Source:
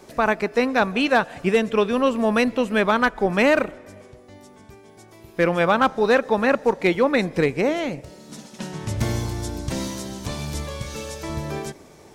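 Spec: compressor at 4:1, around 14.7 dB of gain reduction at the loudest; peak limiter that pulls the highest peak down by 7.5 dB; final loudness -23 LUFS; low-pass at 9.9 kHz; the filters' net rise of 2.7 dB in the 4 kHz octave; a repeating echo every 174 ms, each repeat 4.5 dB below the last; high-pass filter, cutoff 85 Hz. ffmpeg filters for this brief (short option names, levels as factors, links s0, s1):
-af "highpass=85,lowpass=9900,equalizer=f=4000:t=o:g=3.5,acompressor=threshold=0.0251:ratio=4,alimiter=level_in=1.19:limit=0.0631:level=0:latency=1,volume=0.841,aecho=1:1:174|348|522|696|870|1044|1218|1392|1566:0.596|0.357|0.214|0.129|0.0772|0.0463|0.0278|0.0167|0.01,volume=3.76"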